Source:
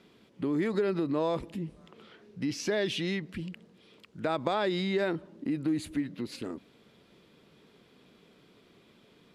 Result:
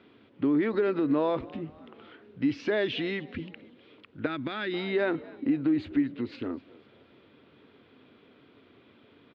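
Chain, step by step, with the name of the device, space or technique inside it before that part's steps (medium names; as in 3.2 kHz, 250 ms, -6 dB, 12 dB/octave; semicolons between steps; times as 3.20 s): frequency-shifting delay pedal into a guitar cabinet (frequency-shifting echo 250 ms, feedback 43%, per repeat +64 Hz, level -22 dB; cabinet simulation 76–3500 Hz, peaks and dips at 92 Hz +7 dB, 180 Hz -10 dB, 270 Hz +6 dB, 1.4 kHz +3 dB); 4.26–4.74 s: high-order bell 690 Hz -14.5 dB; trim +2 dB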